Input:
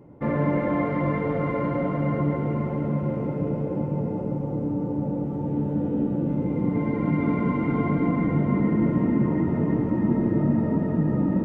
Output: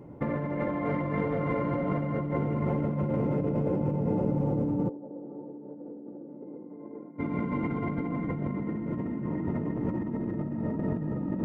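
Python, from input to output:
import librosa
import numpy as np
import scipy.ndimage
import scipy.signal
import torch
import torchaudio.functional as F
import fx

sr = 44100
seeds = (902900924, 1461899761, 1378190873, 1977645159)

y = fx.over_compress(x, sr, threshold_db=-28.0, ratio=-1.0)
y = fx.ladder_bandpass(y, sr, hz=470.0, resonance_pct=25, at=(4.88, 7.18), fade=0.02)
y = F.gain(torch.from_numpy(y), -1.5).numpy()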